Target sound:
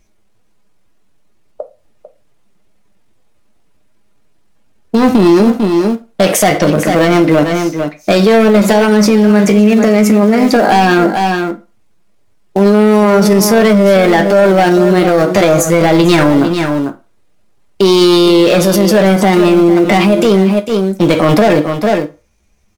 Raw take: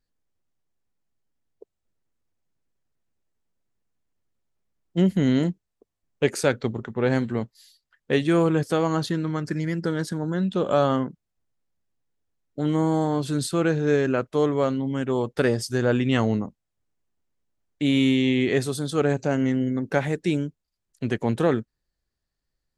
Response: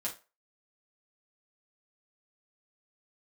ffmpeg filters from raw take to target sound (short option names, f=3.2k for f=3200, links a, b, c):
-filter_complex "[0:a]highshelf=f=9k:g=-10,asplit=2[a][b];[b]aeval=exprs='val(0)*gte(abs(val(0)),0.0562)':c=same,volume=-9dB[c];[a][c]amix=inputs=2:normalize=0,asetrate=58866,aresample=44100,atempo=0.749154,asoftclip=type=tanh:threshold=-19.5dB,aecho=1:1:448:0.224,asplit=2[d][e];[1:a]atrim=start_sample=2205[f];[e][f]afir=irnorm=-1:irlink=0,volume=-2.5dB[g];[d][g]amix=inputs=2:normalize=0,alimiter=level_in=21dB:limit=-1dB:release=50:level=0:latency=1,volume=-1dB"